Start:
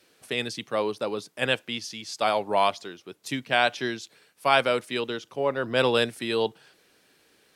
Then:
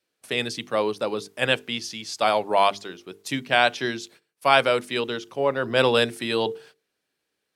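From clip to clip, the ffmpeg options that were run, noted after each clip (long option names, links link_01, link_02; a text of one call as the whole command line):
ffmpeg -i in.wav -af "agate=range=-20dB:threshold=-52dB:ratio=16:detection=peak,bandreject=frequency=50:width_type=h:width=6,bandreject=frequency=100:width_type=h:width=6,bandreject=frequency=150:width_type=h:width=6,bandreject=frequency=200:width_type=h:width=6,bandreject=frequency=250:width_type=h:width=6,bandreject=frequency=300:width_type=h:width=6,bandreject=frequency=350:width_type=h:width=6,bandreject=frequency=400:width_type=h:width=6,bandreject=frequency=450:width_type=h:width=6,volume=3dB" out.wav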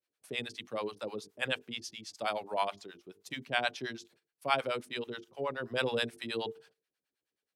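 ffmpeg -i in.wav -filter_complex "[0:a]acrossover=split=610[link_01][link_02];[link_01]aeval=exprs='val(0)*(1-1/2+1/2*cos(2*PI*9.4*n/s))':channel_layout=same[link_03];[link_02]aeval=exprs='val(0)*(1-1/2-1/2*cos(2*PI*9.4*n/s))':channel_layout=same[link_04];[link_03][link_04]amix=inputs=2:normalize=0,volume=-7.5dB" out.wav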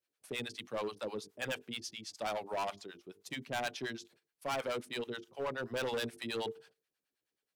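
ffmpeg -i in.wav -af "volume=32dB,asoftclip=hard,volume=-32dB" out.wav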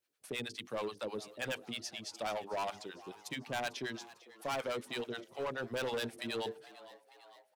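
ffmpeg -i in.wav -filter_complex "[0:a]asplit=2[link_01][link_02];[link_02]acompressor=threshold=-45dB:ratio=6,volume=0dB[link_03];[link_01][link_03]amix=inputs=2:normalize=0,asplit=6[link_04][link_05][link_06][link_07][link_08][link_09];[link_05]adelay=449,afreqshift=100,volume=-18.5dB[link_10];[link_06]adelay=898,afreqshift=200,volume=-22.9dB[link_11];[link_07]adelay=1347,afreqshift=300,volume=-27.4dB[link_12];[link_08]adelay=1796,afreqshift=400,volume=-31.8dB[link_13];[link_09]adelay=2245,afreqshift=500,volume=-36.2dB[link_14];[link_04][link_10][link_11][link_12][link_13][link_14]amix=inputs=6:normalize=0,volume=-3dB" out.wav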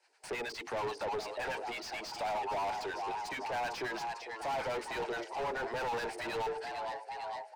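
ffmpeg -i in.wav -filter_complex "[0:a]highpass=frequency=420:width=0.5412,highpass=frequency=420:width=1.3066,equalizer=frequency=530:width_type=q:width=4:gain=-7,equalizer=frequency=880:width_type=q:width=4:gain=9,equalizer=frequency=1200:width_type=q:width=4:gain=-9,equalizer=frequency=3400:width_type=q:width=4:gain=-9,equalizer=frequency=4800:width_type=q:width=4:gain=6,equalizer=frequency=8500:width_type=q:width=4:gain=4,lowpass=frequency=9400:width=0.5412,lowpass=frequency=9400:width=1.3066,asplit=2[link_01][link_02];[link_02]highpass=frequency=720:poles=1,volume=34dB,asoftclip=type=tanh:threshold=-23.5dB[link_03];[link_01][link_03]amix=inputs=2:normalize=0,lowpass=frequency=1400:poles=1,volume=-6dB,volume=-3.5dB" out.wav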